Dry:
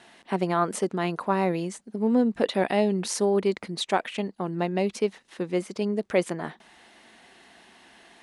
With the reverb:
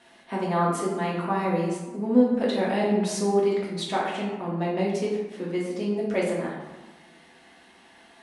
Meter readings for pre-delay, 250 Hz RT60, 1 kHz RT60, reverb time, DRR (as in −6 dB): 3 ms, 1.5 s, 1.2 s, 1.2 s, −5.0 dB